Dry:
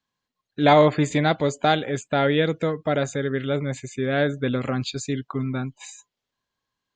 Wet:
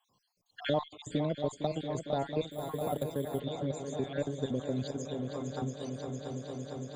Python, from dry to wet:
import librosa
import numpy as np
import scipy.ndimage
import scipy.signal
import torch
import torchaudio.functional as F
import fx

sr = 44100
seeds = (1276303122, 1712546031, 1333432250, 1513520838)

y = fx.spec_dropout(x, sr, seeds[0], share_pct=58)
y = fx.band_shelf(y, sr, hz=1800.0, db=-12.5, octaves=1.2)
y = fx.cheby_harmonics(y, sr, harmonics=(8,), levels_db=(-38,), full_scale_db=-5.0)
y = fx.echo_heads(y, sr, ms=228, heads='second and third', feedback_pct=70, wet_db=-12)
y = fx.resample_bad(y, sr, factor=4, down='filtered', up='hold', at=(2.51, 3.4))
y = fx.band_squash(y, sr, depth_pct=70)
y = F.gain(torch.from_numpy(y), -8.5).numpy()